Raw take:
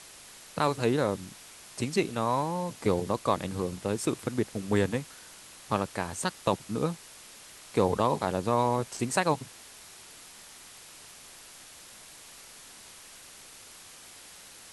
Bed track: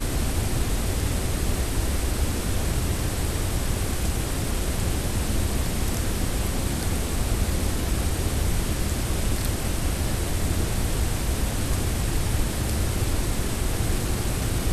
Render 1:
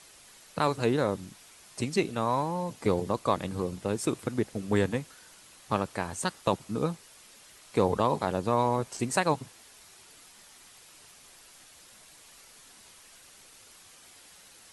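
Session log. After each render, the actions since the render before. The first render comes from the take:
broadband denoise 6 dB, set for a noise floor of −50 dBFS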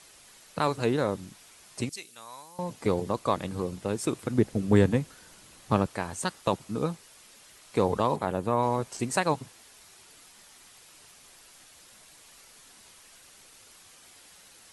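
0:01.89–0:02.59: first-order pre-emphasis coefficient 0.97
0:04.30–0:05.87: low-shelf EQ 440 Hz +8 dB
0:08.16–0:08.63: parametric band 5,000 Hz −8.5 dB 1.1 octaves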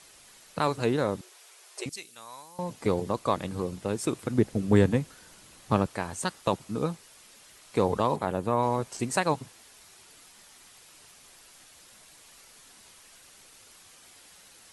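0:01.21–0:01.86: linear-phase brick-wall high-pass 340 Hz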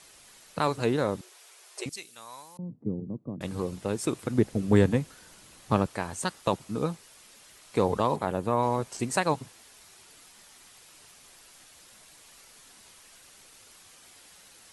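0:02.57–0:03.41: flat-topped band-pass 180 Hz, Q 1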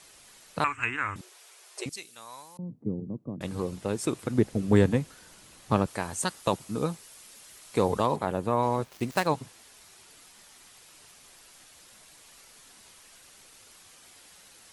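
0:00.64–0:01.16: drawn EQ curve 100 Hz 0 dB, 160 Hz −25 dB, 280 Hz −11 dB, 540 Hz −24 dB, 840 Hz −7 dB, 1,200 Hz +6 dB, 2,600 Hz +12 dB, 4,100 Hz −26 dB, 7,800 Hz 0 dB, 11,000 Hz −23 dB
0:05.87–0:08.06: high-shelf EQ 6,800 Hz +7 dB
0:08.84–0:09.27: gap after every zero crossing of 0.07 ms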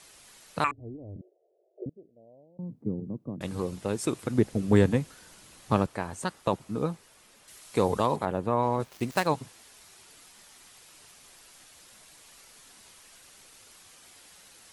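0:00.71–0:02.59: Butterworth low-pass 660 Hz 72 dB per octave
0:05.86–0:07.48: high-shelf EQ 3,300 Hz −11 dB
0:08.25–0:08.80: high-shelf EQ 4,200 Hz −9 dB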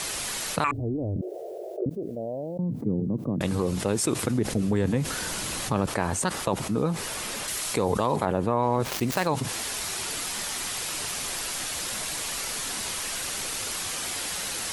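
brickwall limiter −15 dBFS, peak gain reduction 7.5 dB
envelope flattener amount 70%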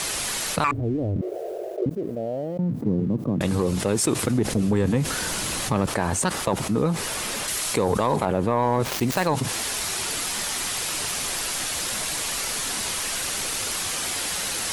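reversed playback
upward compression, threshold −30 dBFS
reversed playback
leveller curve on the samples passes 1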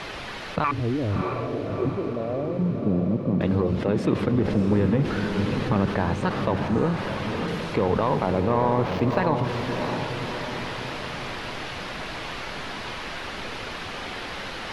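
high-frequency loss of the air 320 metres
feedback delay with all-pass diffusion 643 ms, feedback 56%, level −5.5 dB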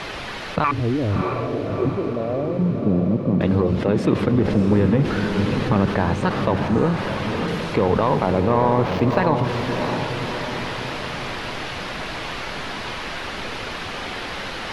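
level +4 dB

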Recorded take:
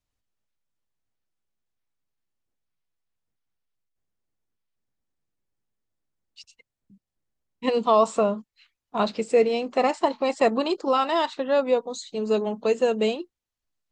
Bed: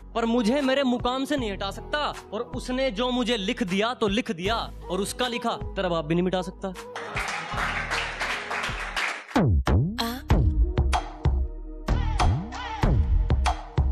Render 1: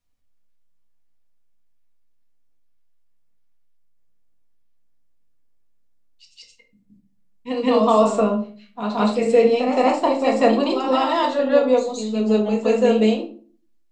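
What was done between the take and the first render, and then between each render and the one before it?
on a send: backwards echo 170 ms −6.5 dB
on the sum: rectangular room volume 320 cubic metres, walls furnished, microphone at 1.8 metres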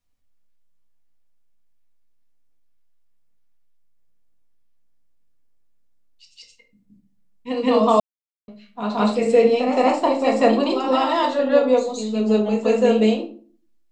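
0:08.00–0:08.48: silence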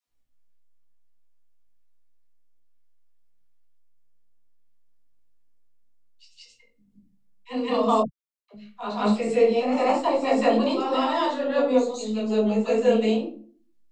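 all-pass dispersion lows, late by 75 ms, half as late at 390 Hz
micro pitch shift up and down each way 20 cents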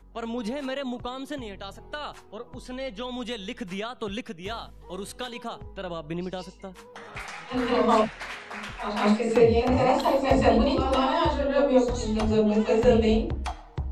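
mix in bed −8.5 dB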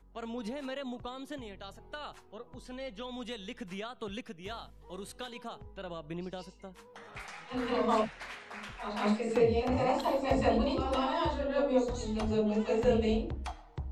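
level −7.5 dB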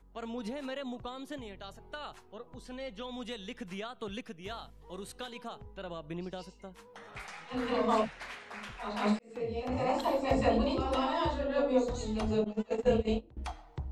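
0:09.19–0:10.02: fade in
0:12.44–0:13.37: noise gate −29 dBFS, range −20 dB

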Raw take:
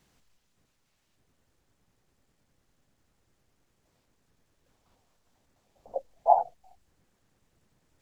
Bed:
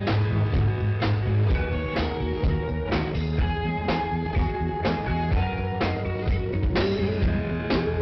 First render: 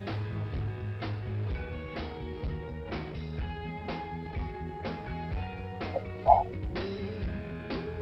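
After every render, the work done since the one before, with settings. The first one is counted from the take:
mix in bed −11.5 dB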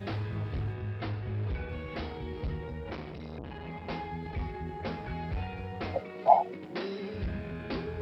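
0:00.73–0:01.69: high-frequency loss of the air 73 metres
0:02.92–0:03.90: saturating transformer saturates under 420 Hz
0:06.00–0:07.14: high-pass filter 180 Hz 24 dB per octave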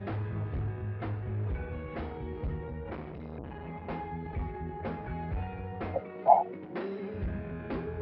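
low-pass filter 1,900 Hz 12 dB per octave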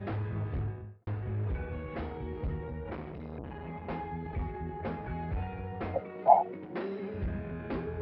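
0:00.56–0:01.07: fade out and dull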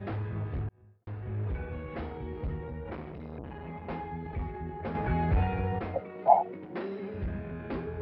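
0:00.69–0:01.39: fade in
0:04.95–0:05.79: clip gain +8.5 dB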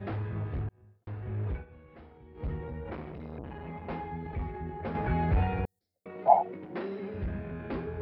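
0:01.53–0:02.46: duck −14.5 dB, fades 0.12 s
0:05.65–0:06.06: inverse Chebyshev high-pass filter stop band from 2,900 Hz, stop band 50 dB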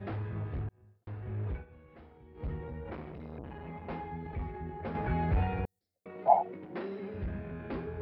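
level −2.5 dB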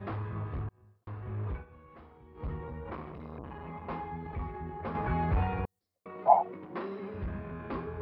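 parametric band 1,100 Hz +11 dB 0.39 octaves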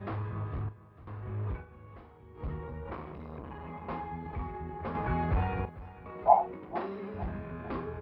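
double-tracking delay 40 ms −13 dB
repeating echo 451 ms, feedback 47%, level −17.5 dB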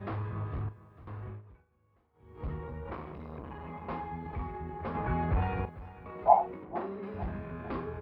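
0:01.23–0:02.32: duck −20 dB, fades 0.19 s
0:04.95–0:05.42: high-frequency loss of the air 150 metres
0:06.63–0:07.03: low-pass filter 1,500 Hz 6 dB per octave

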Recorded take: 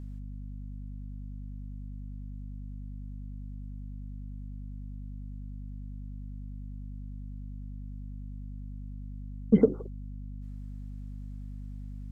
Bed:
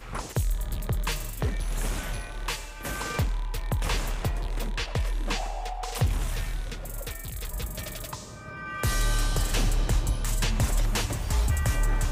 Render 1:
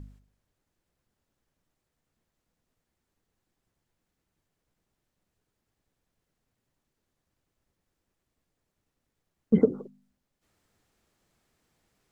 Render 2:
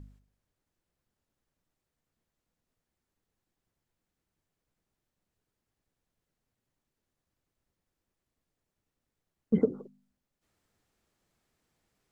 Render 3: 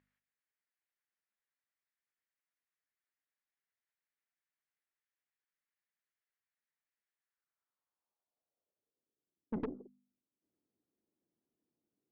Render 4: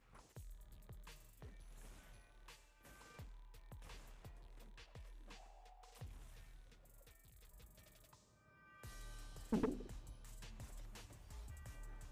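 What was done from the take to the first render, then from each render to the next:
hum removal 50 Hz, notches 5
level −4.5 dB
band-pass filter sweep 1,900 Hz → 300 Hz, 0:07.19–0:09.39; tube saturation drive 32 dB, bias 0.55
mix in bed −29 dB

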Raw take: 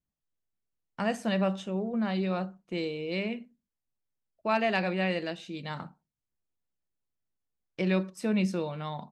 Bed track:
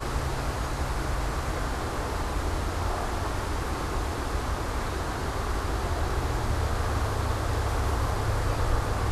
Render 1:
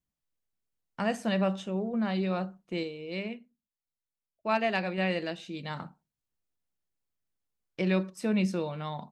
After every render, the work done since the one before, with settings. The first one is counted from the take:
0:02.83–0:04.98: expander for the loud parts, over −43 dBFS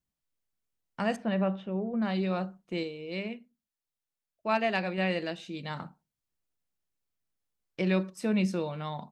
0:01.16–0:02.02: high-frequency loss of the air 380 metres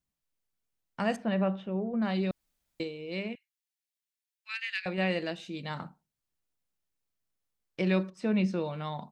0:02.31–0:02.80: fill with room tone
0:03.35–0:04.86: Butterworth high-pass 1,700 Hz
0:08.10–0:08.65: high-frequency loss of the air 110 metres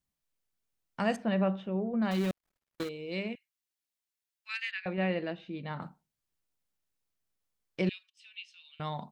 0:02.11–0:02.89: gap after every zero crossing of 0.25 ms
0:04.71–0:05.82: high-frequency loss of the air 350 metres
0:07.89–0:08.80: four-pole ladder high-pass 2,800 Hz, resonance 75%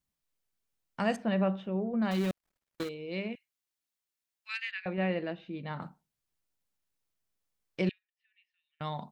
0:02.94–0:03.34: high-frequency loss of the air 110 metres
0:04.58–0:05.67: high-shelf EQ 5,800 Hz −9 dB
0:07.91–0:08.81: resonant band-pass 1,800 Hz, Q 19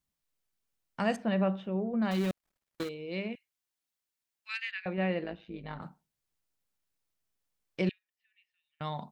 0:05.24–0:05.83: amplitude modulation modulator 110 Hz, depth 55%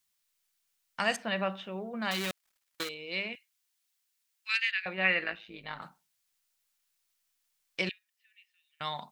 0:05.05–0:05.38: gain on a spectral selection 1,100–2,800 Hz +8 dB
tilt shelving filter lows −10 dB, about 770 Hz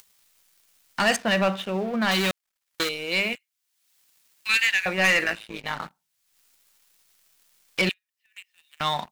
upward compression, threshold −42 dBFS
leveller curve on the samples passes 3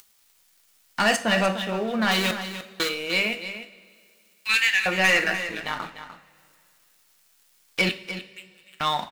single-tap delay 299 ms −11.5 dB
coupled-rooms reverb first 0.34 s, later 2.4 s, from −18 dB, DRR 6.5 dB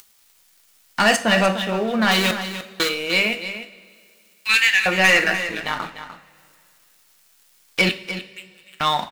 level +4.5 dB

